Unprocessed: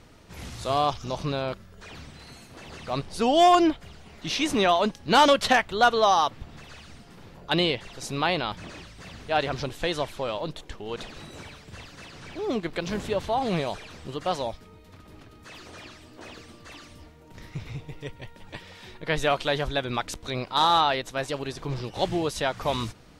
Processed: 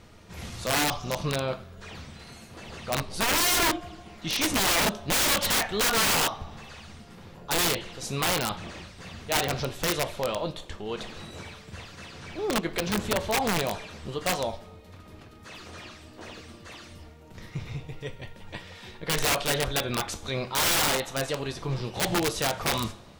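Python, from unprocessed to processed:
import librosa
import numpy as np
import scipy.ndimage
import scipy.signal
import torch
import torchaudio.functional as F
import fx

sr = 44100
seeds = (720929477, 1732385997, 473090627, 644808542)

y = fx.rev_double_slope(x, sr, seeds[0], early_s=0.36, late_s=1.5, knee_db=-18, drr_db=6.5)
y = (np.mod(10.0 ** (18.5 / 20.0) * y + 1.0, 2.0) - 1.0) / 10.0 ** (18.5 / 20.0)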